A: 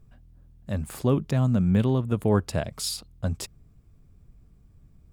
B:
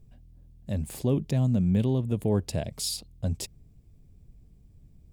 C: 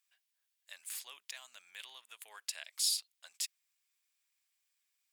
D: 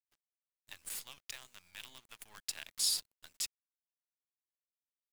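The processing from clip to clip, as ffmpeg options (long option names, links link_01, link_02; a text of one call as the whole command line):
ffmpeg -i in.wav -filter_complex "[0:a]equalizer=frequency=1300:width=1.6:gain=-13.5,asplit=2[link_01][link_02];[link_02]alimiter=limit=-21dB:level=0:latency=1,volume=-1.5dB[link_03];[link_01][link_03]amix=inputs=2:normalize=0,volume=-5dB" out.wav
ffmpeg -i in.wav -af "highpass=frequency=1400:width=0.5412,highpass=frequency=1400:width=1.3066" out.wav
ffmpeg -i in.wav -af "acrusher=bits=8:dc=4:mix=0:aa=0.000001" out.wav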